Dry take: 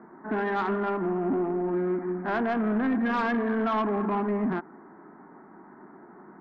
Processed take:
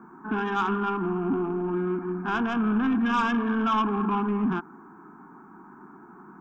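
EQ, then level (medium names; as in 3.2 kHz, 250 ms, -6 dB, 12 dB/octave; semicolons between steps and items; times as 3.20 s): treble shelf 4 kHz +10.5 dB; static phaser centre 2.9 kHz, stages 8; +4.0 dB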